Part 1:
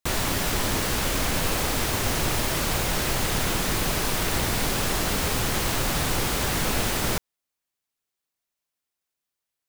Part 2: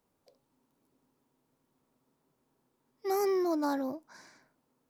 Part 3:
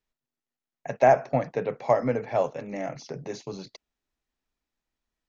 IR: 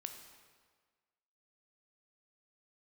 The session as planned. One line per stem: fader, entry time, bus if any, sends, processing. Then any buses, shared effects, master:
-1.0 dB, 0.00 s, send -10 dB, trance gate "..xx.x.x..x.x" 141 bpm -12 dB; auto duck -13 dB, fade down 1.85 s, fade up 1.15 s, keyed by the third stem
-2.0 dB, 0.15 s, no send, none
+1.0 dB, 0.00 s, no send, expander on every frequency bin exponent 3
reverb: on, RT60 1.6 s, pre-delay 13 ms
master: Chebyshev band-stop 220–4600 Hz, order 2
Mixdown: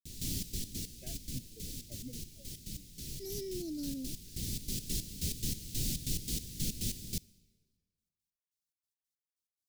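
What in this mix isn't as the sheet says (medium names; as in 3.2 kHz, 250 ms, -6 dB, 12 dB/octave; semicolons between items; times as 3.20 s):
stem 1 -1.0 dB -> -7.5 dB; stem 3 +1.0 dB -> -10.5 dB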